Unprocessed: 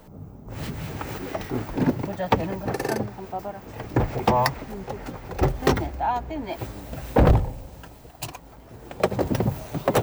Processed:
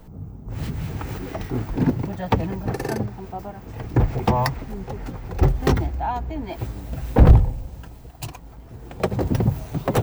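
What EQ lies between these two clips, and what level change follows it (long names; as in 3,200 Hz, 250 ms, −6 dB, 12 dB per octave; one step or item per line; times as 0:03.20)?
low-shelf EQ 170 Hz +11 dB
notch filter 580 Hz, Q 12
−2.0 dB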